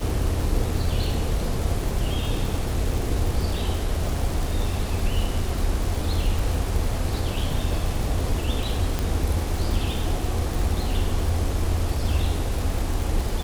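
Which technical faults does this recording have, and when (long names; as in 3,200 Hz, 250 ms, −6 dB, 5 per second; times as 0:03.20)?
surface crackle 200 per second −28 dBFS
0:08.99: click −11 dBFS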